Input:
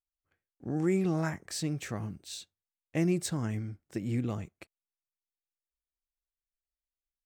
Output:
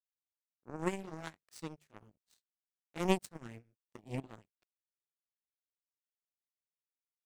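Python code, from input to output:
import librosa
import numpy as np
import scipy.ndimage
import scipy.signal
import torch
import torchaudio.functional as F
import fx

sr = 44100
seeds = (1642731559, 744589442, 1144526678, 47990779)

y = fx.pitch_glide(x, sr, semitones=2.0, runs='starting unshifted')
y = fx.hum_notches(y, sr, base_hz=50, count=4)
y = fx.power_curve(y, sr, exponent=3.0)
y = y * librosa.db_to_amplitude(6.5)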